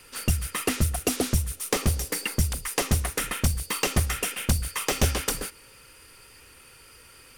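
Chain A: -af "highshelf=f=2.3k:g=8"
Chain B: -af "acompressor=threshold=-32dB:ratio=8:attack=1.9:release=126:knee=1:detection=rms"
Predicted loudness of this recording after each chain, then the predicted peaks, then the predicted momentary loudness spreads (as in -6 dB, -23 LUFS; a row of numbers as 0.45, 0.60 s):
-22.0, -38.0 LUFS; -4.5, -22.0 dBFS; 3, 12 LU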